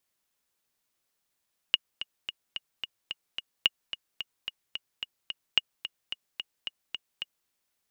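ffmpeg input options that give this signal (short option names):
-f lavfi -i "aevalsrc='pow(10,(-7.5-12.5*gte(mod(t,7*60/219),60/219))/20)*sin(2*PI*2870*mod(t,60/219))*exp(-6.91*mod(t,60/219)/0.03)':d=5.75:s=44100"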